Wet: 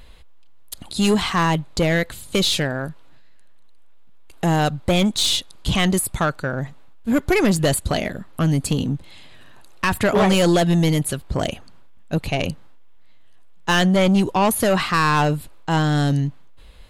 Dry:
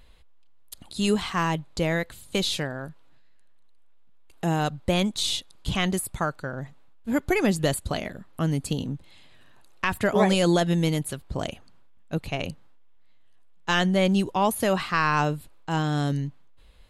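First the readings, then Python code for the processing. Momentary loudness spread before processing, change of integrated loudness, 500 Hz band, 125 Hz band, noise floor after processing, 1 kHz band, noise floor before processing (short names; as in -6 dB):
14 LU, +5.5 dB, +5.0 dB, +6.5 dB, -41 dBFS, +5.0 dB, -50 dBFS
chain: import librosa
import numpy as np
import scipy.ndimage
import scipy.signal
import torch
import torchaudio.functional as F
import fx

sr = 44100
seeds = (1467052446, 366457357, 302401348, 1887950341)

y = 10.0 ** (-20.5 / 20.0) * np.tanh(x / 10.0 ** (-20.5 / 20.0))
y = F.gain(torch.from_numpy(y), 9.0).numpy()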